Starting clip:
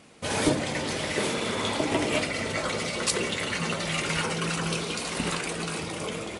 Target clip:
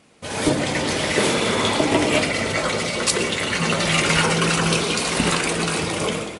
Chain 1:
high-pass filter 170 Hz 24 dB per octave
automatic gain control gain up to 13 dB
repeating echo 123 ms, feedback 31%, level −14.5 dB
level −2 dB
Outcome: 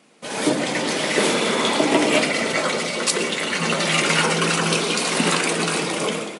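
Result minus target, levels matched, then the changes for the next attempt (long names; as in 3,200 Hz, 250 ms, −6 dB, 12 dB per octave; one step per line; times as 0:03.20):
125 Hz band −4.5 dB
remove: high-pass filter 170 Hz 24 dB per octave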